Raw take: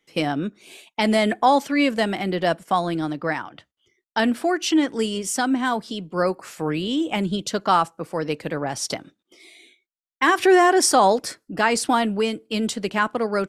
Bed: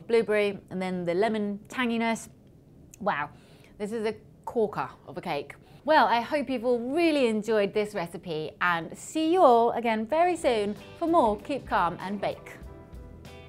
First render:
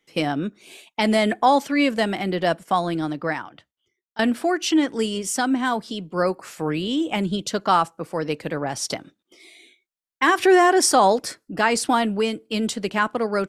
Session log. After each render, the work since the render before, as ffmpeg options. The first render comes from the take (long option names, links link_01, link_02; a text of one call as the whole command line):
ffmpeg -i in.wav -filter_complex "[0:a]asplit=2[link_01][link_02];[link_01]atrim=end=4.19,asetpts=PTS-STARTPTS,afade=type=out:start_time=3.23:duration=0.96:silence=0.0891251[link_03];[link_02]atrim=start=4.19,asetpts=PTS-STARTPTS,afade=type=in:duration=0.004:curve=hsin:silence=0.0891251[link_04];[link_03][link_04]concat=n=2:v=0:a=1" out.wav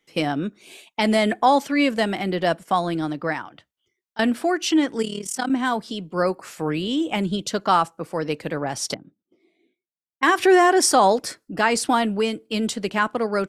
ffmpeg -i in.wav -filter_complex "[0:a]asettb=1/sr,asplit=3[link_01][link_02][link_03];[link_01]atrim=end=5.024[link_04];[link_02]atrim=start=5.02:end=5.5,asetpts=PTS-STARTPTS,afade=type=in:duration=0.004:curve=qsin,afade=type=out:start_time=0.476:duration=0.004:curve=qsin,tremolo=f=37:d=0.824[link_05];[link_03]atrim=start=5.496[link_06];[link_04][link_05]acrossfade=duration=0.004:curve1=hsin:curve2=qsin[link_07];[link_07][link_06]acrossfade=duration=0.004:curve1=qsin:curve2=hsin,asettb=1/sr,asplit=3[link_08][link_09][link_10];[link_08]atrim=end=8.944[link_11];[link_09]atrim=start=8.94:end=10.23,asetpts=PTS-STARTPTS,afade=type=in:duration=0.004:curve=qsin,afade=type=out:start_time=1.286:duration=0.004:curve=qsin,bandpass=frequency=170:width_type=q:width=0.99[link_12];[link_10]atrim=start=10.226[link_13];[link_11][link_12]acrossfade=duration=0.004:curve1=hsin:curve2=qsin[link_14];[link_14][link_13]acrossfade=duration=0.004:curve1=qsin:curve2=hsin" out.wav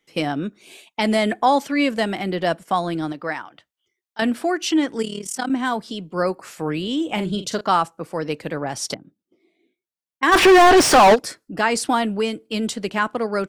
ffmpeg -i in.wav -filter_complex "[0:a]asettb=1/sr,asplit=3[link_01][link_02][link_03];[link_01]atrim=end=3.124[link_04];[link_02]atrim=start=3.12:end=4.22,asetpts=PTS-STARTPTS,afade=type=in:duration=0.004:curve=qsin,afade=type=out:start_time=1.096:duration=0.004:curve=qsin,lowshelf=frequency=280:gain=-8.5[link_05];[link_03]atrim=start=4.216[link_06];[link_04][link_05]acrossfade=duration=0.004:curve1=hsin:curve2=qsin[link_07];[link_07][link_06]acrossfade=duration=0.004:curve1=qsin:curve2=hsin,asettb=1/sr,asplit=3[link_08][link_09][link_10];[link_08]atrim=end=7.054[link_11];[link_09]atrim=start=7.05:end=7.61,asetpts=PTS-STARTPTS,afade=type=in:duration=0.004:curve=qsin,afade=type=out:start_time=0.556:duration=0.004:curve=qsin,asplit=2[link_12][link_13];[link_13]adelay=43,volume=-9dB[link_14];[link_12][link_14]amix=inputs=2:normalize=0,atrim=end_sample=24696[link_15];[link_10]atrim=start=7.606[link_16];[link_11][link_15]acrossfade=duration=0.004:curve1=hsin:curve2=qsin[link_17];[link_17][link_16]acrossfade=duration=0.004:curve1=qsin:curve2=hsin,asplit=3[link_18][link_19][link_20];[link_18]afade=type=out:start_time=10.31:duration=0.02[link_21];[link_19]asplit=2[link_22][link_23];[link_23]highpass=frequency=720:poles=1,volume=34dB,asoftclip=type=tanh:threshold=-4.5dB[link_24];[link_22][link_24]amix=inputs=2:normalize=0,lowpass=frequency=2300:poles=1,volume=-6dB,afade=type=in:start_time=10.31:duration=0.02,afade=type=out:start_time=11.14:duration=0.02[link_25];[link_20]afade=type=in:start_time=11.14:duration=0.02[link_26];[link_21][link_25][link_26]amix=inputs=3:normalize=0" out.wav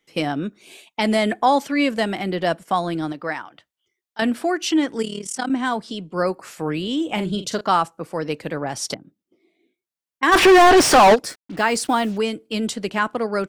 ffmpeg -i in.wav -filter_complex "[0:a]asettb=1/sr,asplit=3[link_01][link_02][link_03];[link_01]atrim=end=5.224[link_04];[link_02]atrim=start=5.22:end=6.13,asetpts=PTS-STARTPTS,afade=type=in:duration=0.004:curve=qsin,afade=type=out:start_time=0.906:duration=0.004:curve=qsin,lowpass=frequency=11000:width=0.5412,lowpass=frequency=11000:width=1.3066[link_05];[link_03]atrim=start=6.126[link_06];[link_04][link_05]acrossfade=duration=0.004:curve1=hsin:curve2=qsin[link_07];[link_07][link_06]acrossfade=duration=0.004:curve1=qsin:curve2=hsin,asettb=1/sr,asplit=3[link_08][link_09][link_10];[link_08]atrim=end=11.254[link_11];[link_09]atrim=start=11.25:end=12.18,asetpts=PTS-STARTPTS,afade=type=in:duration=0.004:curve=qsin,afade=type=out:start_time=0.926:duration=0.004:curve=qsin,acrusher=bits=6:mix=0:aa=0.5[link_12];[link_10]atrim=start=12.176[link_13];[link_11][link_12]acrossfade=duration=0.004:curve1=hsin:curve2=qsin[link_14];[link_14][link_13]acrossfade=duration=0.004:curve1=qsin:curve2=hsin" out.wav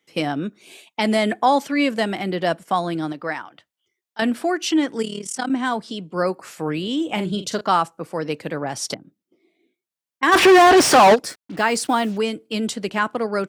ffmpeg -i in.wav -af "highpass=80" out.wav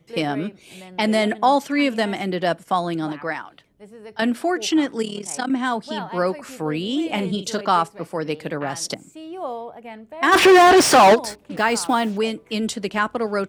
ffmpeg -i in.wav -i bed.wav -filter_complex "[1:a]volume=-11dB[link_01];[0:a][link_01]amix=inputs=2:normalize=0" out.wav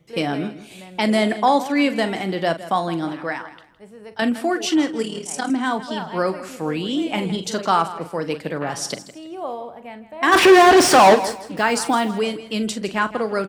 ffmpeg -i in.wav -filter_complex "[0:a]asplit=2[link_01][link_02];[link_02]adelay=42,volume=-12dB[link_03];[link_01][link_03]amix=inputs=2:normalize=0,aecho=1:1:162|324|486:0.178|0.0462|0.012" out.wav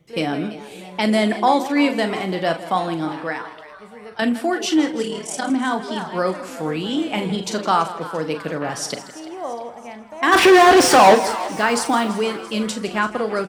ffmpeg -i in.wav -filter_complex "[0:a]asplit=2[link_01][link_02];[link_02]adelay=38,volume=-12dB[link_03];[link_01][link_03]amix=inputs=2:normalize=0,asplit=6[link_04][link_05][link_06][link_07][link_08][link_09];[link_05]adelay=337,afreqshift=140,volume=-17dB[link_10];[link_06]adelay=674,afreqshift=280,volume=-21.9dB[link_11];[link_07]adelay=1011,afreqshift=420,volume=-26.8dB[link_12];[link_08]adelay=1348,afreqshift=560,volume=-31.6dB[link_13];[link_09]adelay=1685,afreqshift=700,volume=-36.5dB[link_14];[link_04][link_10][link_11][link_12][link_13][link_14]amix=inputs=6:normalize=0" out.wav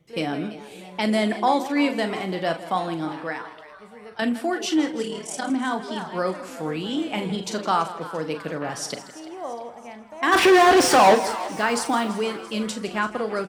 ffmpeg -i in.wav -af "volume=-4dB" out.wav